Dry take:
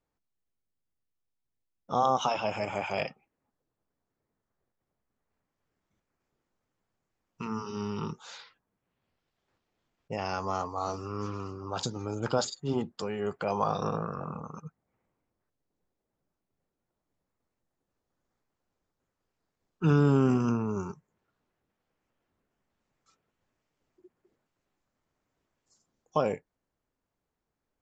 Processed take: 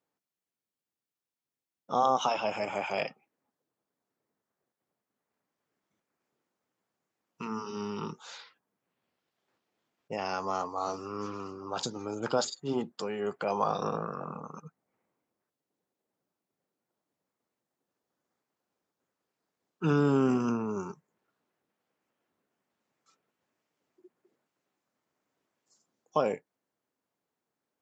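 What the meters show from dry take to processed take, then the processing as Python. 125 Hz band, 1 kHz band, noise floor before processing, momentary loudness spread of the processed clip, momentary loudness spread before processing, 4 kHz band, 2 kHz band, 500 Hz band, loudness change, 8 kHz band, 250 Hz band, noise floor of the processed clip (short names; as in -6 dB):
-6.5 dB, 0.0 dB, -85 dBFS, 15 LU, 15 LU, 0.0 dB, 0.0 dB, 0.0 dB, -1.0 dB, n/a, -1.5 dB, under -85 dBFS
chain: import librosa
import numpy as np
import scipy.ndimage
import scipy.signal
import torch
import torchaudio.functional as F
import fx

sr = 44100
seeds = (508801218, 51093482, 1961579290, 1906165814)

y = scipy.signal.sosfilt(scipy.signal.butter(2, 190.0, 'highpass', fs=sr, output='sos'), x)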